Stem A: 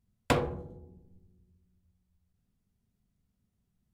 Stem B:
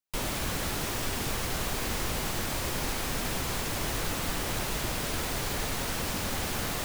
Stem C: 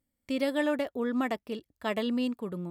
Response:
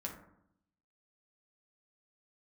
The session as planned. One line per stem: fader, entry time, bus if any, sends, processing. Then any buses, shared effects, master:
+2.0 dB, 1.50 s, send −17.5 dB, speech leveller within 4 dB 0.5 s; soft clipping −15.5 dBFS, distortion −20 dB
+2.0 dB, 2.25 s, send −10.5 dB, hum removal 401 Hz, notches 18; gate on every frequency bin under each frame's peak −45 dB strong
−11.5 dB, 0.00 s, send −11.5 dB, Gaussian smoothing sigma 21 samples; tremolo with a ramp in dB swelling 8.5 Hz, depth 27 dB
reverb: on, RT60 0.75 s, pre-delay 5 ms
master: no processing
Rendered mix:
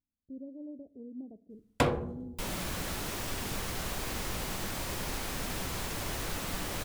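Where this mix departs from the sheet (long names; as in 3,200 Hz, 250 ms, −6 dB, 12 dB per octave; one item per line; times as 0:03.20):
stem B +2.0 dB → −6.0 dB
stem C: missing tremolo with a ramp in dB swelling 8.5 Hz, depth 27 dB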